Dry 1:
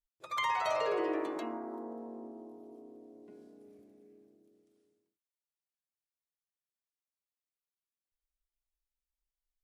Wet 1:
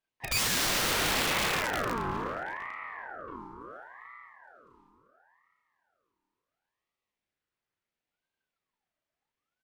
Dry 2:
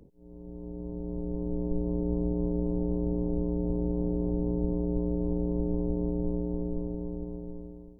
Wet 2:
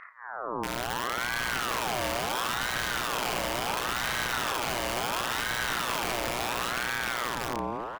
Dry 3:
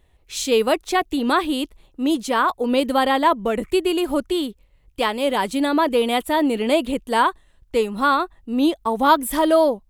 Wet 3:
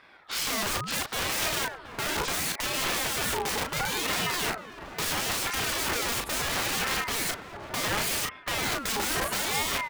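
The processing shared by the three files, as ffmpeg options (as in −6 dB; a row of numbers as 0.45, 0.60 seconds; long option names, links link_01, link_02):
-filter_complex "[0:a]highshelf=frequency=2300:gain=-10,bandreject=frequency=277.6:width_type=h:width=4,bandreject=frequency=555.2:width_type=h:width=4,asplit=2[link_01][link_02];[link_02]acompressor=threshold=-32dB:ratio=10,volume=-1dB[link_03];[link_01][link_03]amix=inputs=2:normalize=0,asoftclip=type=tanh:threshold=-8.5dB,asplit=2[link_04][link_05];[link_05]highpass=frequency=720:poles=1,volume=22dB,asoftclip=type=tanh:threshold=-9dB[link_06];[link_04][link_06]amix=inputs=2:normalize=0,lowpass=frequency=2100:poles=1,volume=-6dB,aeval=exprs='(mod(9.44*val(0)+1,2)-1)/9.44':channel_layout=same,asplit=2[link_07][link_08];[link_08]adelay=34,volume=-5dB[link_09];[link_07][link_09]amix=inputs=2:normalize=0,asplit=2[link_10][link_11];[link_11]adelay=726,lowpass=frequency=980:poles=1,volume=-9dB,asplit=2[link_12][link_13];[link_13]adelay=726,lowpass=frequency=980:poles=1,volume=0.24,asplit=2[link_14][link_15];[link_15]adelay=726,lowpass=frequency=980:poles=1,volume=0.24[link_16];[link_12][link_14][link_16]amix=inputs=3:normalize=0[link_17];[link_10][link_17]amix=inputs=2:normalize=0,aeval=exprs='val(0)*sin(2*PI*1100*n/s+1100*0.45/0.72*sin(2*PI*0.72*n/s))':channel_layout=same,volume=-2.5dB"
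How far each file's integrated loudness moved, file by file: +6.5, +2.0, −7.5 LU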